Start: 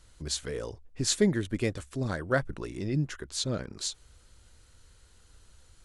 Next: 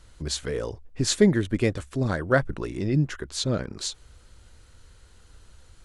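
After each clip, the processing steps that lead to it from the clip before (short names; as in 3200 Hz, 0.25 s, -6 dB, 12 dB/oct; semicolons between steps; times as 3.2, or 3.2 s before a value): high shelf 4100 Hz -6 dB; gain +6 dB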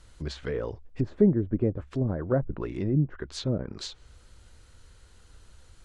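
treble ducked by the level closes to 550 Hz, closed at -20.5 dBFS; gain -1.5 dB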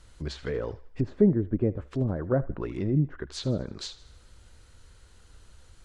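thinning echo 78 ms, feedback 52%, high-pass 690 Hz, level -16.5 dB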